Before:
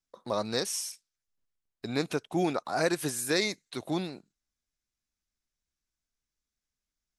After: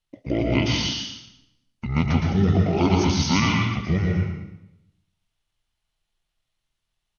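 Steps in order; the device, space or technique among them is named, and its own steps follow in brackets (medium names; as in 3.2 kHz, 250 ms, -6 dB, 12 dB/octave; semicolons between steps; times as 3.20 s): monster voice (pitch shift -10.5 st; bass shelf 130 Hz +7 dB; delay 114 ms -9 dB; reverberation RT60 0.85 s, pre-delay 109 ms, DRR 0 dB); trim +5 dB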